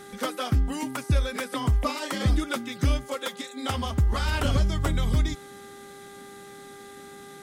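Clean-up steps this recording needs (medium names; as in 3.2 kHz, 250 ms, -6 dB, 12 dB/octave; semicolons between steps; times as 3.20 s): de-click; de-hum 399.9 Hz, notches 5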